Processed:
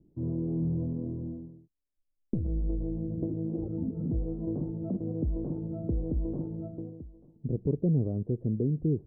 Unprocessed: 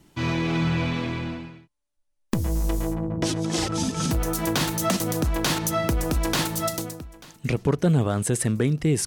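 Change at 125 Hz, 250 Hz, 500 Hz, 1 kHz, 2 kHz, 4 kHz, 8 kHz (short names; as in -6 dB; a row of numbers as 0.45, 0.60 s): -5.5 dB, -5.5 dB, -8.5 dB, under -25 dB, under -40 dB, under -40 dB, under -40 dB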